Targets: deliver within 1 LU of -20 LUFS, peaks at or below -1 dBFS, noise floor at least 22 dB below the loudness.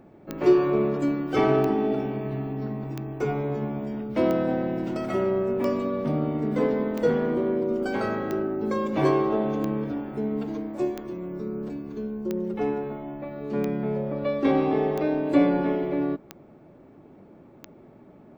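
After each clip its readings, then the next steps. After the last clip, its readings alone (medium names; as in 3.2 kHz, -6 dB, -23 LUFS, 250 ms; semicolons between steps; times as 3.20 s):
clicks found 14; loudness -26.0 LUFS; peak level -8.5 dBFS; loudness target -20.0 LUFS
-> de-click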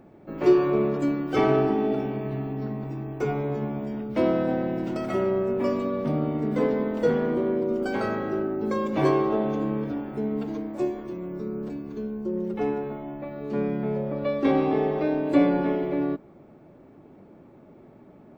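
clicks found 0; loudness -26.0 LUFS; peak level -8.5 dBFS; loudness target -20.0 LUFS
-> trim +6 dB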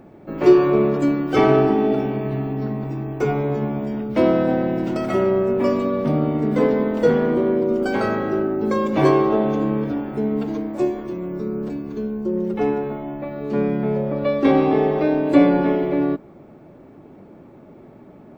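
loudness -20.0 LUFS; peak level -2.5 dBFS; noise floor -45 dBFS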